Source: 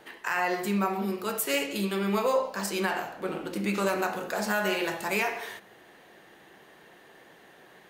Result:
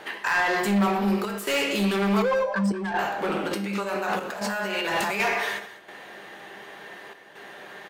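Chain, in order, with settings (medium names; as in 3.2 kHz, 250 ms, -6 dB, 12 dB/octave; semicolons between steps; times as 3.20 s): 2.22–2.99 s: spectral contrast enhancement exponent 2.5; peaking EQ 89 Hz +4 dB 2.5 oct; in parallel at +1 dB: peak limiter -24 dBFS, peak gain reduction 10.5 dB; 3.51–5.20 s: on the sum: compressor with a negative ratio -30 dBFS, ratio -1; hard clipper -21.5 dBFS, distortion -12 dB; feedback comb 200 Hz, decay 0.48 s, harmonics all, mix 70%; overdrive pedal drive 12 dB, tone 4.1 kHz, clips at -22 dBFS; square tremolo 0.68 Hz, depth 60%, duty 85%; on a send: delay 197 ms -15.5 dB; on the sum: trim +8 dB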